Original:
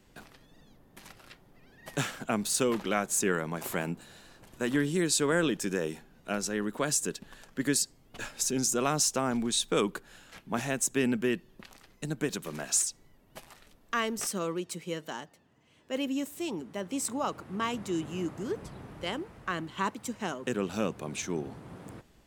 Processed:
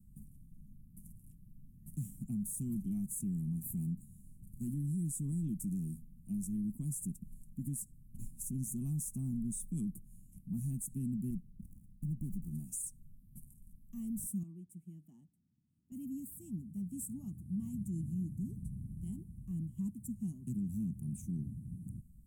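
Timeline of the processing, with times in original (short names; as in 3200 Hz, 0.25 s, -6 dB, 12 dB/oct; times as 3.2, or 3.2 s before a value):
11.3–12.51 running maximum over 9 samples
14.43–15.92 tone controls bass -14 dB, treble -15 dB
whole clip: elliptic band-stop 200–9500 Hz, stop band 40 dB; low shelf 220 Hz +8 dB; limiter -29.5 dBFS; gain -1 dB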